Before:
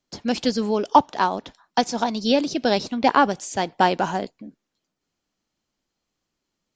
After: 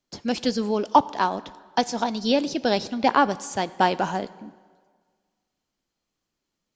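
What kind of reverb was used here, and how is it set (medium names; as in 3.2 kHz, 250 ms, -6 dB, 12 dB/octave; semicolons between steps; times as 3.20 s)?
plate-style reverb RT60 1.7 s, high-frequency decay 0.8×, DRR 17.5 dB; trim -2 dB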